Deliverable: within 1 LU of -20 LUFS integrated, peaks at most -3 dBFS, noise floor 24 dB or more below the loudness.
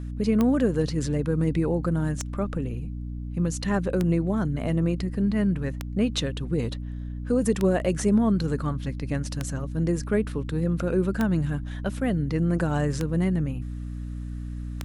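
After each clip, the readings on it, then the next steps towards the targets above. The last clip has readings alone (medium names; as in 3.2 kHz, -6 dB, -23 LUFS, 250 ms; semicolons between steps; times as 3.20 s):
clicks found 9; hum 60 Hz; highest harmonic 300 Hz; hum level -31 dBFS; loudness -26.5 LUFS; peak level -11.0 dBFS; loudness target -20.0 LUFS
-> de-click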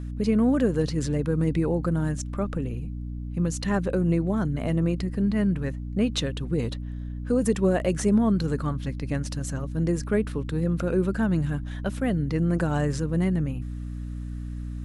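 clicks found 0; hum 60 Hz; highest harmonic 300 Hz; hum level -31 dBFS
-> hum notches 60/120/180/240/300 Hz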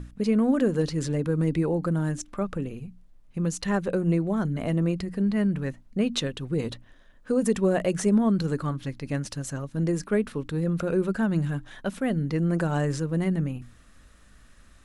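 hum not found; loudness -26.5 LUFS; peak level -12.5 dBFS; loudness target -20.0 LUFS
-> trim +6.5 dB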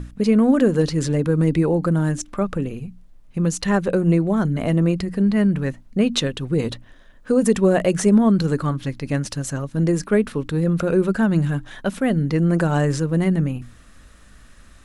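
loudness -20.0 LUFS; peak level -6.0 dBFS; noise floor -48 dBFS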